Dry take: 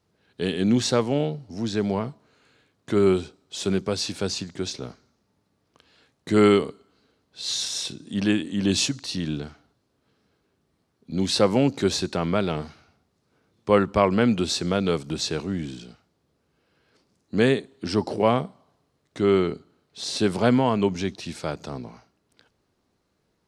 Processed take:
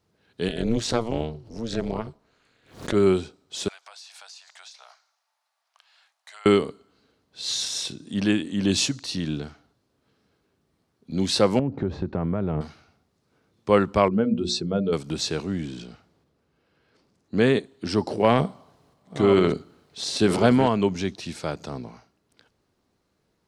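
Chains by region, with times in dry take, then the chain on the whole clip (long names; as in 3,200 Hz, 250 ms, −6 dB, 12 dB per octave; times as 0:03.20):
0:00.48–0:02.94: amplitude modulation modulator 230 Hz, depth 90% + background raised ahead of every attack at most 130 dB per second
0:03.68–0:06.46: Butterworth high-pass 680 Hz 48 dB per octave + downward compressor, threshold −43 dBFS
0:11.59–0:12.61: low-pass filter 1,200 Hz + low-shelf EQ 170 Hz +12 dB + downward compressor 5 to 1, threshold −21 dBFS
0:14.08–0:14.93: expanding power law on the bin magnitudes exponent 1.6 + mains-hum notches 60/120/180/240/300/360/420/480/540/600 Hz + dynamic equaliser 1,900 Hz, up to −5 dB, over −46 dBFS, Q 1.5
0:15.67–0:17.59: high-shelf EQ 5,000 Hz −6.5 dB + transient designer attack 0 dB, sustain +6 dB
0:18.24–0:20.68: delay that plays each chunk backwards 550 ms, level −10 dB + transient designer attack +3 dB, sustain +8 dB
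whole clip: no processing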